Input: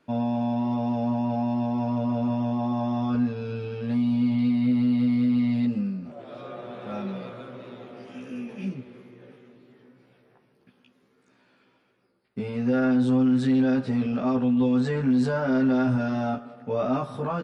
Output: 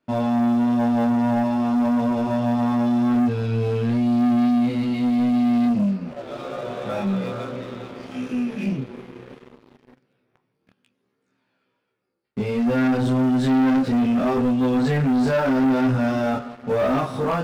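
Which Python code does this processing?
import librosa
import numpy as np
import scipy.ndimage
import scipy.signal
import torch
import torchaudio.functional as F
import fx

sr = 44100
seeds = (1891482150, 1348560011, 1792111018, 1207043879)

y = fx.chorus_voices(x, sr, voices=2, hz=0.27, base_ms=28, depth_ms=2.5, mix_pct=45)
y = fx.leveller(y, sr, passes=3)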